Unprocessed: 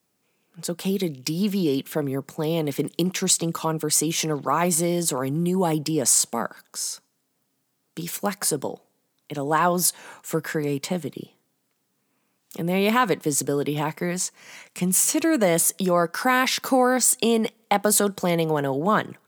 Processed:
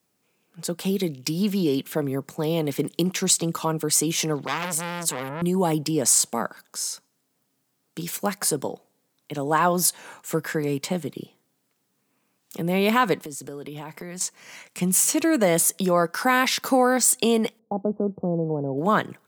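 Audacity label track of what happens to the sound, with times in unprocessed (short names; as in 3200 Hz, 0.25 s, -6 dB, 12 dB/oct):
4.470000	5.420000	core saturation saturates under 3300 Hz
13.180000	14.210000	compressor 5:1, threshold -33 dBFS
17.590000	18.780000	Gaussian blur sigma 13 samples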